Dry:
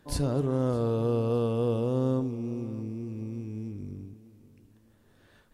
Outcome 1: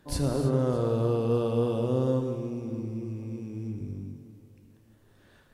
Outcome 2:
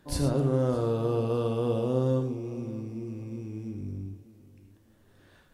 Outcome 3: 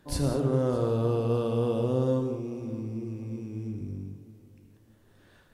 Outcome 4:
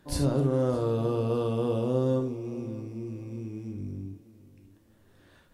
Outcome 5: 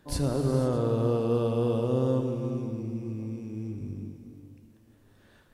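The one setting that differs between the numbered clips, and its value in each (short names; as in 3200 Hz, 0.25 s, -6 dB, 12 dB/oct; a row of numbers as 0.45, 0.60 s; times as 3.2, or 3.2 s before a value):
non-linear reverb, gate: 340, 140, 220, 90, 530 ms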